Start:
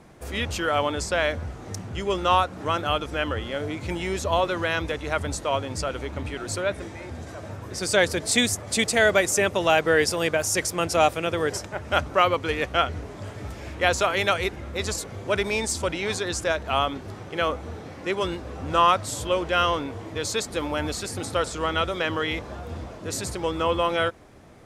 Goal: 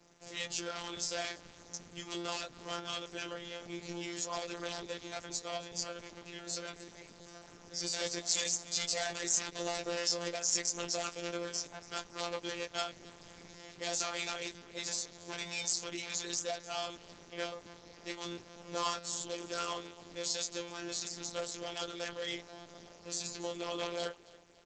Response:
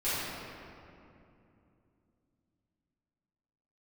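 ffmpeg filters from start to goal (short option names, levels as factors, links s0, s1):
-af "flanger=delay=17:depth=2:speed=2.3,equalizer=f=1200:t=o:w=1.1:g=-3.5,aresample=16000,volume=20,asoftclip=hard,volume=0.0501,aresample=44100,afreqshift=14,aecho=1:1:279|558|837:0.106|0.0392|0.0145,afftfilt=real='hypot(re,im)*cos(PI*b)':imag='0':win_size=1024:overlap=0.75,bass=f=250:g=-5,treble=f=4000:g=14,volume=0.596" -ar 48000 -c:a libopus -b:a 10k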